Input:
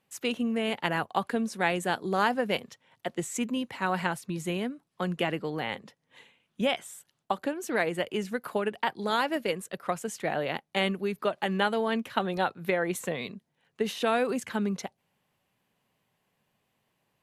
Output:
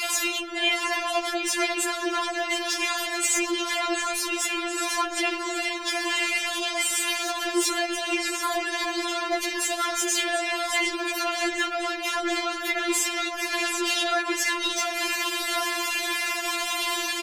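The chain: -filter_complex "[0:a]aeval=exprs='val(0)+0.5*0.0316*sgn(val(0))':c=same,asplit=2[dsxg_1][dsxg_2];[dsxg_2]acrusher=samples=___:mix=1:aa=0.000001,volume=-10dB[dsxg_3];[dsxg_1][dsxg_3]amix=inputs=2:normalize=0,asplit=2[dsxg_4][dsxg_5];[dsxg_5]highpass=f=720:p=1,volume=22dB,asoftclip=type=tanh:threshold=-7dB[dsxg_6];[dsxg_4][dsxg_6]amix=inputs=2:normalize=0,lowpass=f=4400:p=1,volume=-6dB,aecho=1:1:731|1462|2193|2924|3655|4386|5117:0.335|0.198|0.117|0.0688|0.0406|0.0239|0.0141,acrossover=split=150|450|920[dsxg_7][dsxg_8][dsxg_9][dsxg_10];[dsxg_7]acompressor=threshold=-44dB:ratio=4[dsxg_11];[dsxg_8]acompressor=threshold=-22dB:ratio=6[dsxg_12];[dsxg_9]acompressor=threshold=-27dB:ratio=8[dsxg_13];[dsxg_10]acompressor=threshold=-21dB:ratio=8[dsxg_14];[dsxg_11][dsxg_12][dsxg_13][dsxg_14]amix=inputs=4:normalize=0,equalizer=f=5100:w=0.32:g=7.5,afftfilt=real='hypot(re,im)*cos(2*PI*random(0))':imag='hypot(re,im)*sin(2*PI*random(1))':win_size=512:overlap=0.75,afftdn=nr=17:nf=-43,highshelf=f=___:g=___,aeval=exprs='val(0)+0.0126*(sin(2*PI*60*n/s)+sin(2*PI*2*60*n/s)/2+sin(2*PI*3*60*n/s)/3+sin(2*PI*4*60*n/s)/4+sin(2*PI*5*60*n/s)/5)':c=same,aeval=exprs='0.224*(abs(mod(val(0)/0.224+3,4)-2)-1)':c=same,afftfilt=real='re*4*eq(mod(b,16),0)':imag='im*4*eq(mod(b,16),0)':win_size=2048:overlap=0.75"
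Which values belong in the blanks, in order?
8, 8300, 4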